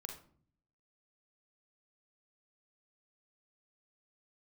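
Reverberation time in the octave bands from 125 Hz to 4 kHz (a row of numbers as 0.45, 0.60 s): 0.90, 0.85, 0.55, 0.45, 0.35, 0.30 s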